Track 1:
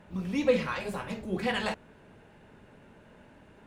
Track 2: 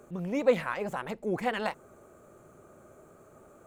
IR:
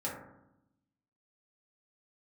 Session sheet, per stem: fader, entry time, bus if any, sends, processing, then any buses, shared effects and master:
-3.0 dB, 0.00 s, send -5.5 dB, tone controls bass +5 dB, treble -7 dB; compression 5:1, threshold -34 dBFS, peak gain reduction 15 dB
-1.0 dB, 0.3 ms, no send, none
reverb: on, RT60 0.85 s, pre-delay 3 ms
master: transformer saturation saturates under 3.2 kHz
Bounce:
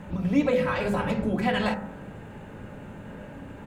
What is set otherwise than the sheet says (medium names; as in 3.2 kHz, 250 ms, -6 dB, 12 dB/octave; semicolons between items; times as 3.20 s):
stem 1 -3.0 dB -> +7.0 dB; master: missing transformer saturation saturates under 3.2 kHz